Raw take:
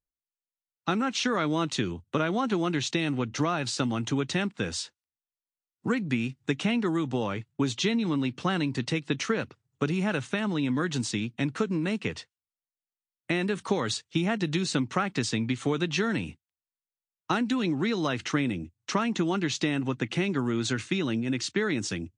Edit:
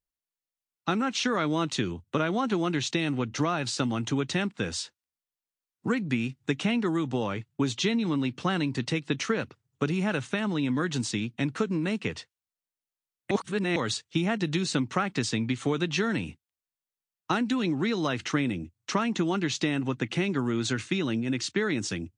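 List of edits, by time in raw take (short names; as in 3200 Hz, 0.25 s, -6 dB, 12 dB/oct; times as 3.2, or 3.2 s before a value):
13.31–13.76 reverse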